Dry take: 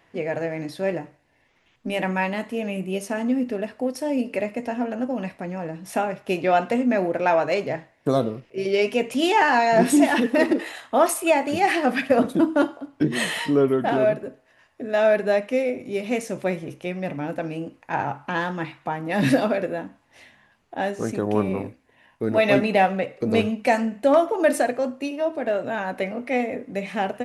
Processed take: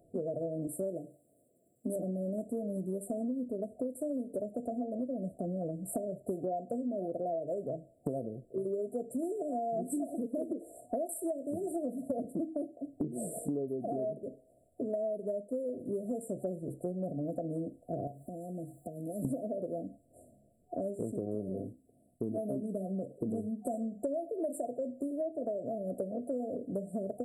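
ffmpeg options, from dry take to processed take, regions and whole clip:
ffmpeg -i in.wav -filter_complex "[0:a]asettb=1/sr,asplit=3[link_01][link_02][link_03];[link_01]atrim=end=0.674[link_04];[link_02]atrim=start=0.67:end=1.96,asetpts=PTS-STARTPTS,afade=type=in:duration=0.004:curve=qsin,afade=type=out:start_time=1.286:duration=0.004:curve=qsin,highpass=160,highshelf=frequency=4900:gain=11[link_05];[link_03]atrim=start=1.956[link_06];[link_04][link_05]acrossfade=duration=0.004:curve1=hsin:curve2=qsin[link_07];[link_07][link_06]acrossfade=duration=0.004:curve1=qsin:curve2=hsin,asettb=1/sr,asplit=3[link_08][link_09][link_10];[link_08]atrim=end=18.074[link_11];[link_09]atrim=start=18.07:end=19.25,asetpts=PTS-STARTPTS,afade=type=in:duration=0.004:curve=qsin,afade=type=out:start_time=1.176:duration=0.004:curve=qsin,aemphasis=mode=production:type=75kf,acompressor=threshold=-40dB:ratio=2.5:attack=3.2:release=140:knee=1:detection=peak[link_12];[link_10]atrim=start=19.246[link_13];[link_11][link_12]acrossfade=duration=0.004:curve1=hsin:curve2=qsin[link_14];[link_14][link_13]acrossfade=duration=0.004:curve1=qsin:curve2=hsin,asettb=1/sr,asplit=3[link_15][link_16][link_17];[link_15]atrim=end=21.644[link_18];[link_16]atrim=start=21.64:end=23.74,asetpts=PTS-STARTPTS,afade=type=in:duration=0.004:curve=qsin,afade=type=out:start_time=2.096:duration=0.004:curve=qsin,lowshelf=frequency=100:gain=-11,aecho=1:1:0.9:0.57,atrim=end_sample=92610[link_19];[link_17]atrim=start=23.736[link_20];[link_18][link_19]acrossfade=duration=0.004:curve1=hsin:curve2=qsin[link_21];[link_21][link_20]acrossfade=duration=0.004:curve1=qsin:curve2=hsin,afftfilt=real='re*(1-between(b*sr/4096,730,7300))':imag='im*(1-between(b*sr/4096,730,7300))':win_size=4096:overlap=0.75,acompressor=threshold=-32dB:ratio=12" out.wav

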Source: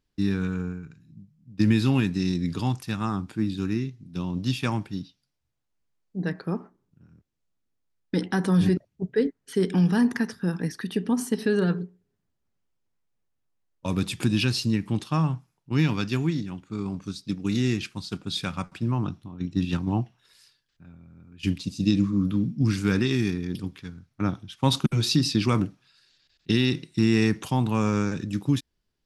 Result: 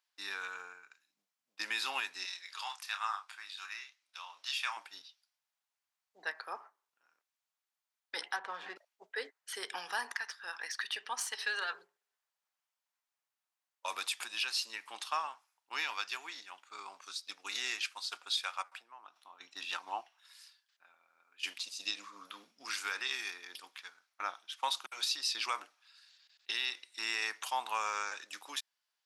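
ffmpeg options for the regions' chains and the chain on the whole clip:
ffmpeg -i in.wav -filter_complex "[0:a]asettb=1/sr,asplit=3[link_01][link_02][link_03];[link_01]atrim=end=2.254[link_04];[link_02]atrim=start=2.25:end=4.77,asetpts=PTS-STARTPTS,afade=type=in:duration=0.004:curve=qsin,afade=type=out:start_time=2.516:duration=0.004:curve=qsin,highpass=1100,highshelf=frequency=6800:gain=-7,asplit=2[link_05][link_06];[link_06]adelay=29,volume=-8dB[link_07];[link_05][link_07]amix=inputs=2:normalize=0,atrim=end_sample=111132[link_08];[link_03]atrim=start=4.766[link_09];[link_04][link_08]acrossfade=duration=0.004:curve1=hsin:curve2=qsin[link_10];[link_10][link_09]acrossfade=duration=0.004:curve1=qsin:curve2=hsin,asettb=1/sr,asplit=3[link_11][link_12][link_13];[link_11]atrim=end=8.364[link_14];[link_12]atrim=start=8.36:end=8.76,asetpts=PTS-STARTPTS,afade=type=in:duration=0.004:curve=qsin,afade=type=out:start_time=0.396:duration=0.004:curve=qsin,lowpass=frequency=2500:poles=1,adynamicsmooth=sensitivity=4:basefreq=1800[link_15];[link_13]atrim=start=8.756[link_16];[link_14][link_15]acrossfade=duration=0.004:curve1=hsin:curve2=qsin[link_17];[link_17][link_16]acrossfade=duration=0.004:curve1=qsin:curve2=hsin,asettb=1/sr,asplit=3[link_18][link_19][link_20];[link_18]atrim=end=10.134[link_21];[link_19]atrim=start=10.13:end=11.73,asetpts=PTS-STARTPTS,afade=type=in:duration=0.004:curve=qsin,afade=type=out:start_time=1.596:duration=0.004:curve=qsin,tiltshelf=frequency=1100:gain=-6,adynamicsmooth=sensitivity=2:basefreq=6000[link_22];[link_20]atrim=start=11.726[link_23];[link_21][link_22]acrossfade=duration=0.004:curve1=hsin:curve2=qsin[link_24];[link_24][link_23]acrossfade=duration=0.004:curve1=qsin:curve2=hsin,asettb=1/sr,asplit=3[link_25][link_26][link_27];[link_25]atrim=end=18.634[link_28];[link_26]atrim=start=18.63:end=19.16,asetpts=PTS-STARTPTS,afade=type=in:duration=0.004:curve=qsin,afade=type=out:start_time=0.526:duration=0.004:curve=qsin,equalizer=frequency=5600:width_type=o:width=1.6:gain=-6,acompressor=threshold=-39dB:ratio=4:attack=3.2:release=140:knee=1:detection=peak[link_29];[link_27]atrim=start=19.156[link_30];[link_28][link_29]acrossfade=duration=0.004:curve1=hsin:curve2=qsin[link_31];[link_31][link_30]acrossfade=duration=0.004:curve1=qsin:curve2=hsin,highpass=frequency=780:width=0.5412,highpass=frequency=780:width=1.3066,alimiter=limit=-22dB:level=0:latency=1:release=493" out.wav

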